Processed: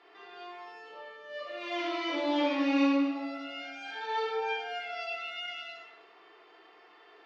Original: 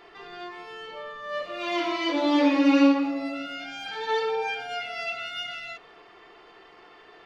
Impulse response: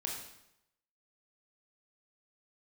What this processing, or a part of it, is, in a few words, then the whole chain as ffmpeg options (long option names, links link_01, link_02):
supermarket ceiling speaker: -filter_complex "[0:a]highpass=270,lowpass=5700,lowshelf=frequency=180:gain=-9[link_01];[1:a]atrim=start_sample=2205[link_02];[link_01][link_02]afir=irnorm=-1:irlink=0,volume=-6dB"